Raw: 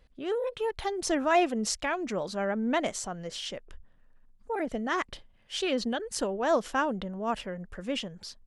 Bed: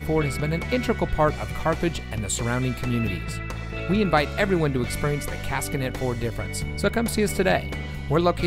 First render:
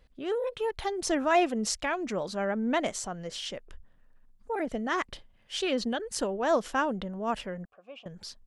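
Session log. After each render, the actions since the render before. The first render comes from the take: 7.65–8.06 s: vowel filter a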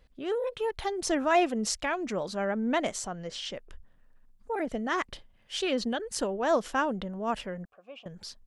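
3.10–3.56 s: low-pass 7.1 kHz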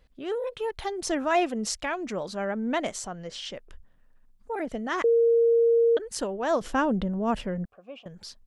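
5.04–5.97 s: bleep 464 Hz -17 dBFS; 6.61–8.03 s: bass shelf 410 Hz +10.5 dB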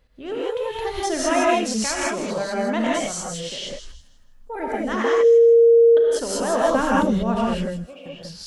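feedback echo behind a high-pass 160 ms, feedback 32%, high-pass 5.5 kHz, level -3 dB; gated-style reverb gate 220 ms rising, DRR -5.5 dB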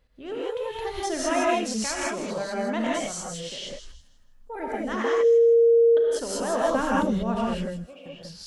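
trim -4.5 dB

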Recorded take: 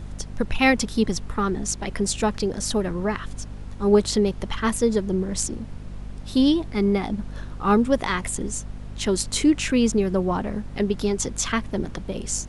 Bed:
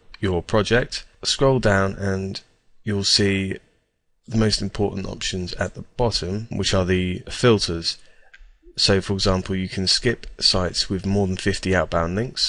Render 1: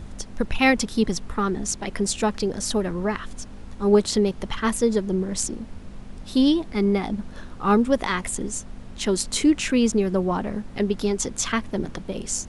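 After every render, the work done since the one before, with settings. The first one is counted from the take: de-hum 50 Hz, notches 3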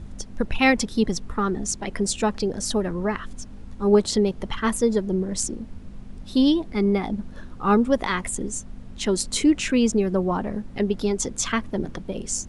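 noise reduction 6 dB, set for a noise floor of -40 dBFS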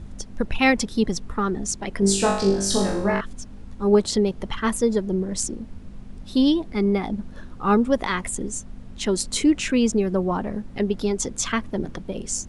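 2.00–3.21 s: flutter echo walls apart 3.5 m, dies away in 0.63 s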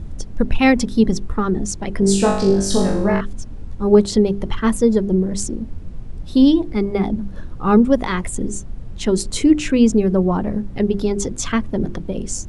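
bass shelf 470 Hz +9.5 dB; hum notches 50/100/150/200/250/300/350/400 Hz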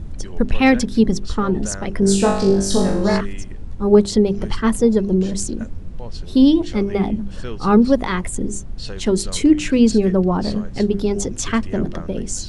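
add bed -16 dB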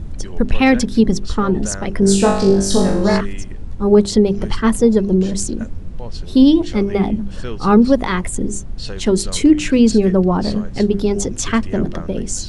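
trim +2.5 dB; peak limiter -2 dBFS, peak gain reduction 3 dB

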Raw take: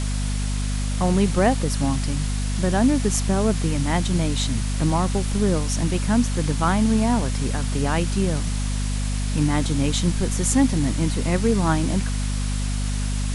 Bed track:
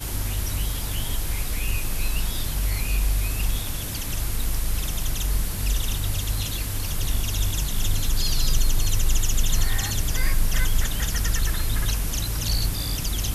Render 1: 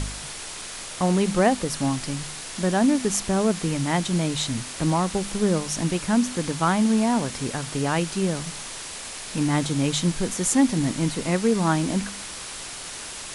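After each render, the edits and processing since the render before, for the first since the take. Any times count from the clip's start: de-hum 50 Hz, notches 5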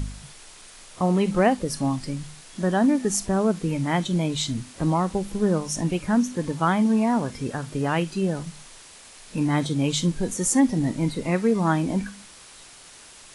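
noise print and reduce 11 dB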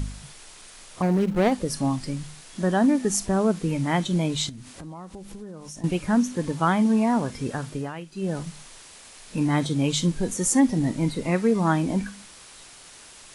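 1.02–1.52 s: median filter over 41 samples; 4.49–5.84 s: compression, threshold -37 dBFS; 7.67–8.37 s: dip -13 dB, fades 0.26 s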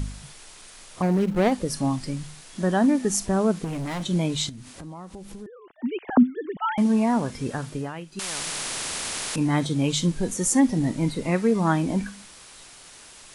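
3.64–4.05 s: hard clipper -27.5 dBFS; 5.46–6.78 s: formants replaced by sine waves; 8.19–9.36 s: spectrum-flattening compressor 10:1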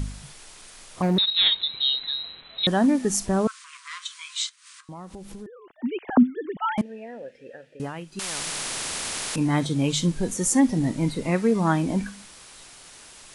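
1.18–2.67 s: frequency inversion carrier 4 kHz; 3.47–4.89 s: brick-wall FIR band-pass 980–10000 Hz; 6.81–7.80 s: vowel filter e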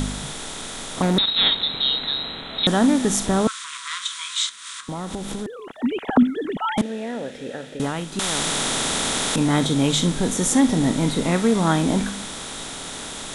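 spectral levelling over time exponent 0.6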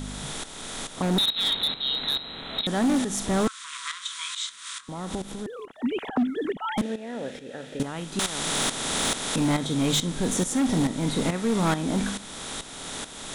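tremolo saw up 2.3 Hz, depth 75%; overload inside the chain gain 18.5 dB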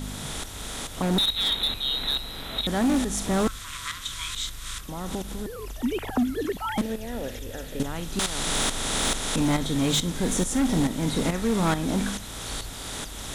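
add bed track -15 dB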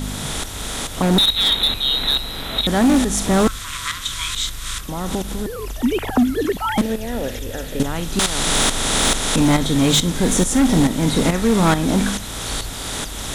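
trim +8 dB

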